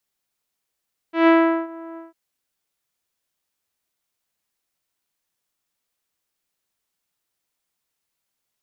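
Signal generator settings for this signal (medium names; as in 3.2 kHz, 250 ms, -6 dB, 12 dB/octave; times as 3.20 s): synth note saw E4 24 dB/octave, low-pass 1.5 kHz, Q 0.77, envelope 1 oct, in 0.55 s, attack 141 ms, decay 0.40 s, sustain -23 dB, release 0.16 s, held 0.84 s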